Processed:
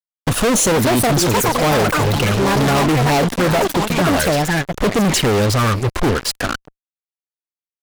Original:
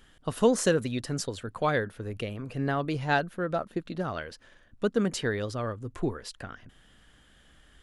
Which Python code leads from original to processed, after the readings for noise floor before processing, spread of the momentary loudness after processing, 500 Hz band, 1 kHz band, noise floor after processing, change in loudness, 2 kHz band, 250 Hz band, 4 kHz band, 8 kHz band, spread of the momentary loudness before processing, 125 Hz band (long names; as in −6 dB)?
−60 dBFS, 5 LU, +11.5 dB, +15.5 dB, below −85 dBFS, +14.0 dB, +13.5 dB, +13.5 dB, +18.0 dB, +18.5 dB, 13 LU, +16.0 dB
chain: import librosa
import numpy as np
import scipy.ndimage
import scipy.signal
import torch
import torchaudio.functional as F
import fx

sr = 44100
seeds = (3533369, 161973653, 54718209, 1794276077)

y = fx.env_flanger(x, sr, rest_ms=9.5, full_db=-25.0)
y = fx.echo_pitch(y, sr, ms=563, semitones=6, count=3, db_per_echo=-6.0)
y = fx.fuzz(y, sr, gain_db=46.0, gate_db=-46.0)